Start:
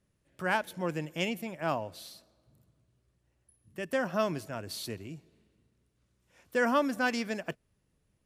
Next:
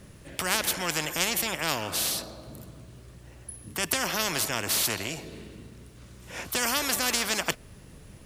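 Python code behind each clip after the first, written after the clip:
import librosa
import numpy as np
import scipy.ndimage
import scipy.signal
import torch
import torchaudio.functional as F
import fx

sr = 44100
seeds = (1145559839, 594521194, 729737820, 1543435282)

y = fx.spectral_comp(x, sr, ratio=4.0)
y = y * librosa.db_to_amplitude(7.5)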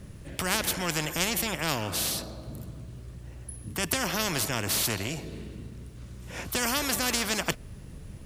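y = fx.low_shelf(x, sr, hz=240.0, db=9.0)
y = y * librosa.db_to_amplitude(-1.5)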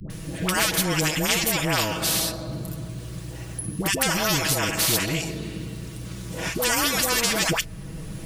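y = x + 0.61 * np.pad(x, (int(6.2 * sr / 1000.0), 0))[:len(x)]
y = fx.dispersion(y, sr, late='highs', ms=101.0, hz=710.0)
y = fx.band_squash(y, sr, depth_pct=40)
y = y * librosa.db_to_amplitude(4.5)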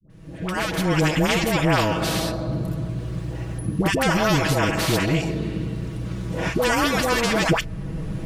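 y = fx.fade_in_head(x, sr, length_s=1.1)
y = fx.lowpass(y, sr, hz=1400.0, slope=6)
y = y * librosa.db_to_amplitude(6.5)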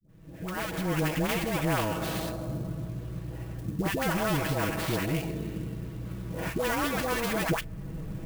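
y = fx.high_shelf(x, sr, hz=10000.0, db=-10.5)
y = fx.clock_jitter(y, sr, seeds[0], jitter_ms=0.036)
y = y * librosa.db_to_amplitude(-8.0)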